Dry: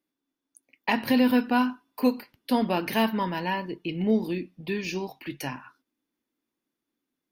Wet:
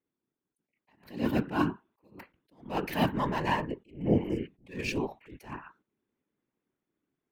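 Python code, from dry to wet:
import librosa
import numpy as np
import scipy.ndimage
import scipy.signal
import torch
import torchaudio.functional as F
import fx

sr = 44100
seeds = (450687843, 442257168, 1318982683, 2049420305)

p1 = fx.wiener(x, sr, points=9)
p2 = fx.spec_repair(p1, sr, seeds[0], start_s=4.08, length_s=0.36, low_hz=1300.0, high_hz=4700.0, source='before')
p3 = fx.whisperise(p2, sr, seeds[1])
p4 = fx.rider(p3, sr, range_db=4, speed_s=0.5)
p5 = p3 + F.gain(torch.from_numpy(p4), 2.0).numpy()
p6 = fx.attack_slew(p5, sr, db_per_s=160.0)
y = F.gain(torch.from_numpy(p6), -8.5).numpy()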